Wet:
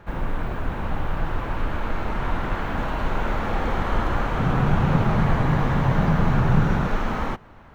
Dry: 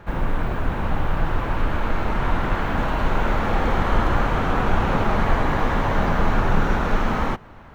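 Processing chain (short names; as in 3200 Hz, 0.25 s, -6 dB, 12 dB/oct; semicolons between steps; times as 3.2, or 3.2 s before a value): 4.39–6.87 bell 140 Hz +14 dB 0.86 oct; gain -3.5 dB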